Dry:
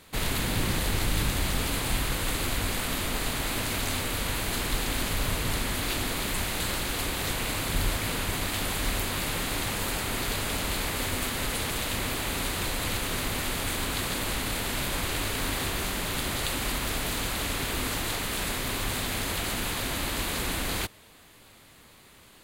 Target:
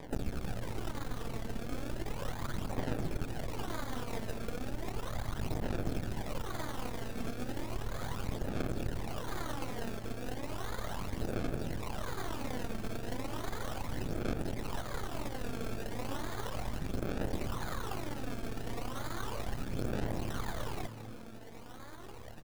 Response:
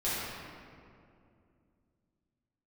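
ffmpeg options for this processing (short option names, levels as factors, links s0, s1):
-filter_complex "[0:a]asettb=1/sr,asplit=3[s0][s1][s2];[s0]atrim=end=17.374[s3];[s1]atrim=start=17.37:end=19.54,asetpts=PTS-STARTPTS,afade=t=in:d=0.004:c=qsin,afade=t=out:st=2.166:d=0.004:c=qsin,highshelf=f=1800:t=q:w=3:g=-13[s4];[s2]atrim=start=19.536[s5];[s3][s4]acrossfade=d=0.004:c1=hsin:c2=qsin[s6];[s6][s5]acrossfade=d=0.004:c1=qsin:c2=hsin,acompressor=threshold=0.01:ratio=16,acrusher=samples=31:mix=1:aa=0.000001:lfo=1:lforange=31:lforate=0.72,aeval=exprs='max(val(0),0)':c=same,aphaser=in_gain=1:out_gain=1:delay=4.5:decay=0.53:speed=0.35:type=sinusoidal,asplit=5[s7][s8][s9][s10][s11];[s8]adelay=199,afreqshift=110,volume=0.282[s12];[s9]adelay=398,afreqshift=220,volume=0.119[s13];[s10]adelay=597,afreqshift=330,volume=0.0495[s14];[s11]adelay=796,afreqshift=440,volume=0.0209[s15];[s7][s12][s13][s14][s15]amix=inputs=5:normalize=0,volume=2.11"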